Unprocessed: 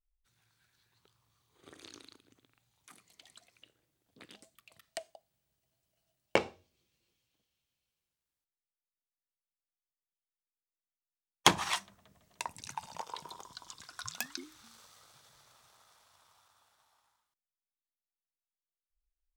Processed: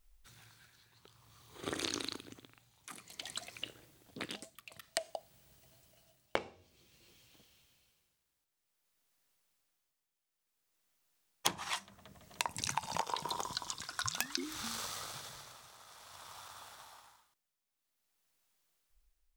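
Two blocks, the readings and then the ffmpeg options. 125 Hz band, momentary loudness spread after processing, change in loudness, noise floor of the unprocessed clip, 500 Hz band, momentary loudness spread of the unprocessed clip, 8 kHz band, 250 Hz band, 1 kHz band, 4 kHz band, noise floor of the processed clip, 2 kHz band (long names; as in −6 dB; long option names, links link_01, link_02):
−2.5 dB, 20 LU, −5.0 dB, below −85 dBFS, −4.0 dB, 25 LU, +1.0 dB, −2.0 dB, −2.5 dB, −2.0 dB, below −85 dBFS, −3.0 dB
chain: -af "tremolo=f=0.54:d=0.71,acompressor=threshold=-49dB:ratio=10,volume=17.5dB"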